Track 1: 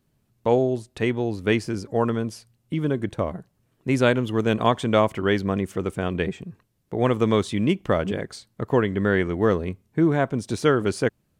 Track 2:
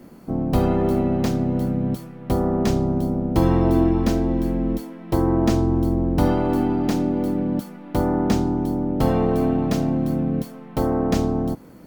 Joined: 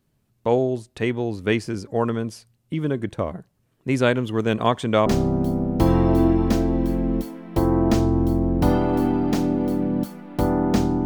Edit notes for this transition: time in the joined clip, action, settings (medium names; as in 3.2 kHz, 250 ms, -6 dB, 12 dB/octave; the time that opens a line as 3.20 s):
track 1
5.06 s: go over to track 2 from 2.62 s